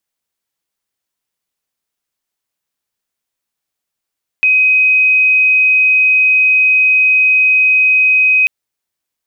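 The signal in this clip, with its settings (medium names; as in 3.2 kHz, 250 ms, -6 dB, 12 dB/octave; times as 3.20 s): tone sine 2.52 kHz -7 dBFS 4.04 s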